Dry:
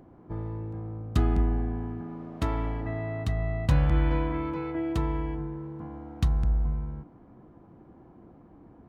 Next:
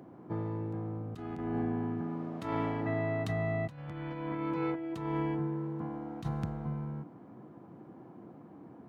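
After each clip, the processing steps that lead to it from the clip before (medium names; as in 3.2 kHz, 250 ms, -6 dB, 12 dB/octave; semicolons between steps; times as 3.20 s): high-pass 120 Hz 24 dB/octave; compressor with a negative ratio -33 dBFS, ratio -0.5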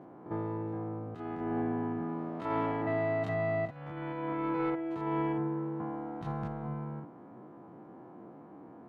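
spectrogram pixelated in time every 50 ms; overdrive pedal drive 12 dB, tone 1.1 kHz, clips at -20.5 dBFS; trim +1.5 dB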